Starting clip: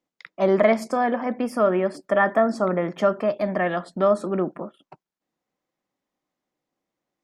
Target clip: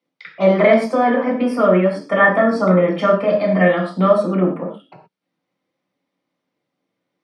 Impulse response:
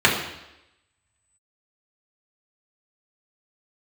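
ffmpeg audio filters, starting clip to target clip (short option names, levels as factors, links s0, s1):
-filter_complex "[0:a]asettb=1/sr,asplit=3[s0][s1][s2];[s0]atrim=end=1.994[s3];[s1]atrim=start=1.99:end=4.11,asetpts=PTS-STARTPTS,afade=t=in:d=0.004:c=qsin,afade=t=out:st=2.116:d=0.004:c=qsin,asplit=2[s4][s5];[s5]adelay=32,volume=0.422[s6];[s4][s6]amix=inputs=2:normalize=0,atrim=end_sample=93492[s7];[s2]atrim=start=4.106[s8];[s3][s7]acrossfade=d=0.004:c1=hsin:c2=qsin[s9];[s9][s8]acrossfade=d=0.004:c1=qsin:c2=hsin[s10];[1:a]atrim=start_sample=2205,afade=t=out:st=0.22:d=0.01,atrim=end_sample=10143,asetrate=57330,aresample=44100[s11];[s10][s11]afir=irnorm=-1:irlink=0,volume=0.237"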